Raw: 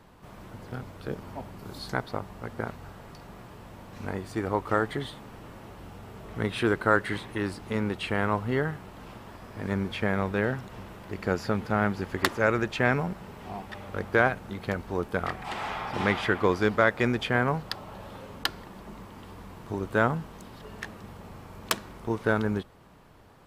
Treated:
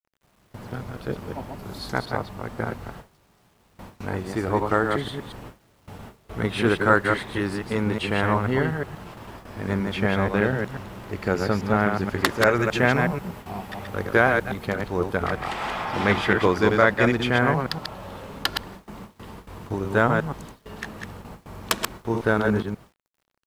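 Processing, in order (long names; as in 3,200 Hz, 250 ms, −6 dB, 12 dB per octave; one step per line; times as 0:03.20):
delay that plays each chunk backwards 121 ms, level −4 dB
noise gate with hold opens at −33 dBFS
0:12.59–0:14.66: high-shelf EQ 12,000 Hz +10.5 dB
bit reduction 11 bits
level +3.5 dB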